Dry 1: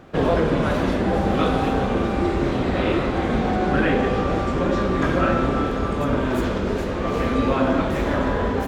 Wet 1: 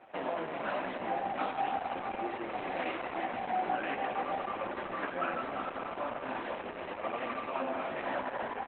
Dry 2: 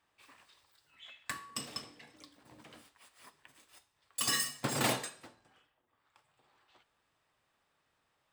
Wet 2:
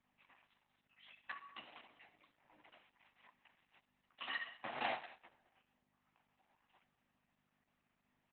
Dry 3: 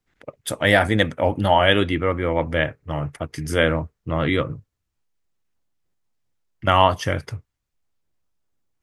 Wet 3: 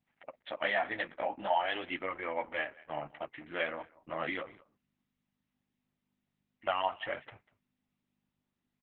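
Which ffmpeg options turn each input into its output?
ffmpeg -i in.wav -af "superequalizer=10b=0.562:11b=0.708,acompressor=threshold=-20dB:ratio=6,flanger=delay=7.9:depth=9.8:regen=-5:speed=0.41:shape=triangular,aeval=exprs='val(0)+0.00141*(sin(2*PI*50*n/s)+sin(2*PI*2*50*n/s)/2+sin(2*PI*3*50*n/s)/3+sin(2*PI*4*50*n/s)/4+sin(2*PI*5*50*n/s)/5)':channel_layout=same,acontrast=26,highpass=430,equalizer=frequency=440:width_type=q:width=4:gain=-10,equalizer=frequency=750:width_type=q:width=4:gain=6,equalizer=frequency=1200:width_type=q:width=4:gain=5,equalizer=frequency=1900:width_type=q:width=4:gain=6,equalizer=frequency=2800:width_type=q:width=4:gain=4,lowpass=frequency=3000:width=0.5412,lowpass=frequency=3000:width=1.3066,aecho=1:1:194:0.0841,volume=-8dB" -ar 48000 -c:a libopus -b:a 8k out.opus

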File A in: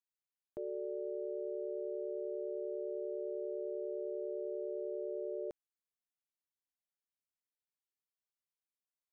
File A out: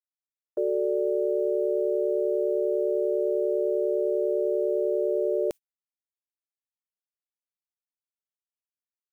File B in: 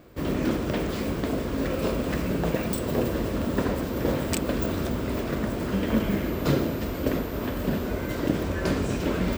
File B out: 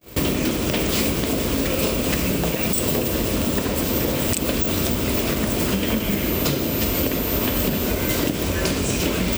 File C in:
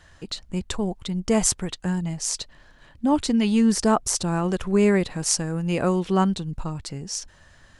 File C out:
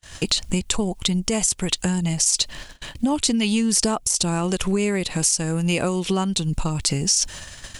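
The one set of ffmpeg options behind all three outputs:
ffmpeg -i in.wav -af "acompressor=threshold=-34dB:ratio=12,aexciter=amount=3.8:drive=1.4:freq=2300,agate=range=-43dB:threshold=-48dB:ratio=16:detection=peak,alimiter=level_in=22.5dB:limit=-1dB:release=50:level=0:latency=1,volume=-7.5dB" out.wav

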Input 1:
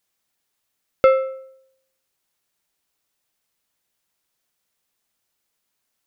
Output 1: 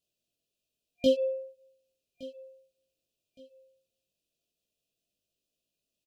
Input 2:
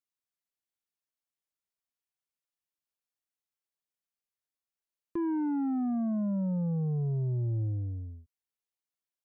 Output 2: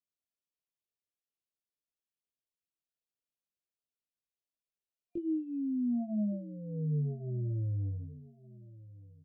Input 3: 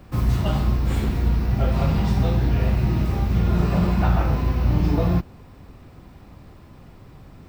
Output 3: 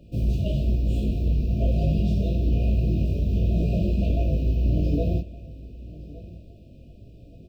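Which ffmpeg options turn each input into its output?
ffmpeg -i in.wav -af "aeval=exprs='0.224*(abs(mod(val(0)/0.224+3,4)-2)-1)':channel_layout=same,highshelf=frequency=4400:gain=-10,flanger=delay=18.5:depth=2.3:speed=1.1,afftfilt=real='re*(1-between(b*sr/4096,710,2400))':imag='im*(1-between(b*sr/4096,710,2400))':win_size=4096:overlap=0.75,aecho=1:1:1166|2332:0.112|0.0325" out.wav

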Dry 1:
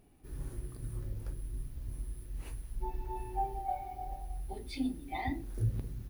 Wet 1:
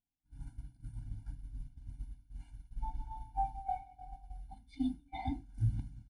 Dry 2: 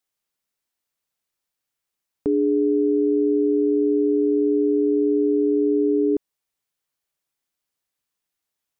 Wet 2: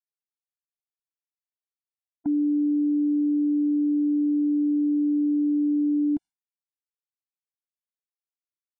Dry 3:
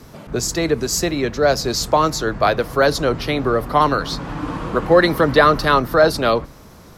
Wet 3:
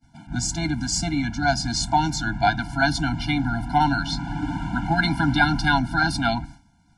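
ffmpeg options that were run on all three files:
ffmpeg -i in.wav -af "aresample=22050,aresample=44100,agate=range=-33dB:threshold=-32dB:ratio=3:detection=peak,afftfilt=real='re*eq(mod(floor(b*sr/1024/340),2),0)':imag='im*eq(mod(floor(b*sr/1024/340),2),0)':win_size=1024:overlap=0.75" out.wav

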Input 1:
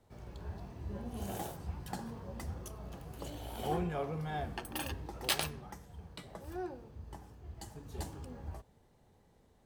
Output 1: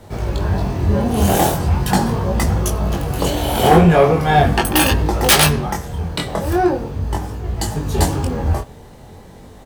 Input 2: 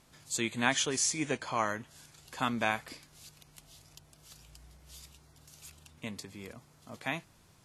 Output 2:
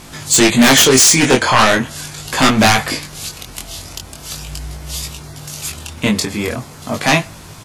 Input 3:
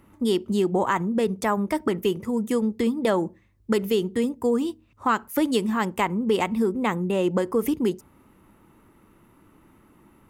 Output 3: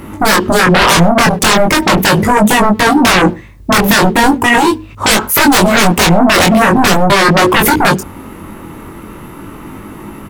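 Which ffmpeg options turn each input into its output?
ffmpeg -i in.wav -filter_complex "[0:a]aeval=exprs='0.376*sin(PI/2*8.91*val(0)/0.376)':channel_layout=same,flanger=delay=19:depth=4.9:speed=0.4,asplit=2[link_01][link_02];[link_02]adelay=100,highpass=300,lowpass=3400,asoftclip=type=hard:threshold=-17dB,volume=-25dB[link_03];[link_01][link_03]amix=inputs=2:normalize=0,volume=6.5dB" out.wav

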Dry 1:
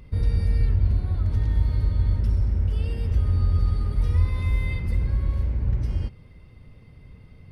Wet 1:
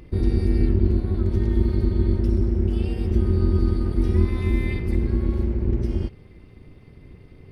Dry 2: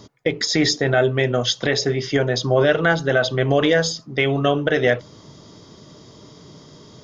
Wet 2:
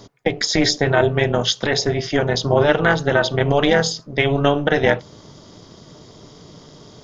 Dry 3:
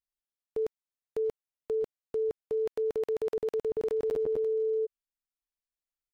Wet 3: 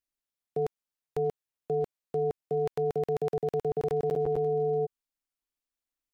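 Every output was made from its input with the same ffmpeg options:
ffmpeg -i in.wav -af "tremolo=f=290:d=0.75,volume=4.5dB" out.wav

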